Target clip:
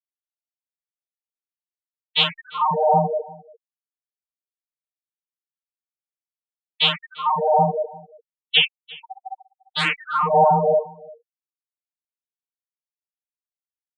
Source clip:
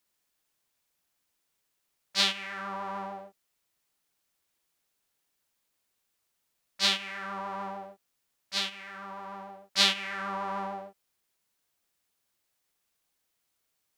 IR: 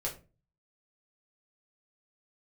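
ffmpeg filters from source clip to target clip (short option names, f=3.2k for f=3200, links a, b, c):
-filter_complex "[0:a]afreqshift=14,afftfilt=real='re*gte(hypot(re,im),0.0708)':imag='im*gte(hypot(re,im),0.0708)':win_size=1024:overlap=0.75,agate=range=-33dB:threshold=-45dB:ratio=3:detection=peak,asplit=2[a][b];[b]acontrast=68,volume=2dB[c];[a][c]amix=inputs=2:normalize=0,afftdn=nr=32:nf=-48,dynaudnorm=f=120:g=3:m=12.5dB,asetrate=34006,aresample=44100,atempo=1.29684,aecho=1:1:346:0.0708,asplit=2[d][e];[e]afreqshift=2.8[f];[d][f]amix=inputs=2:normalize=1"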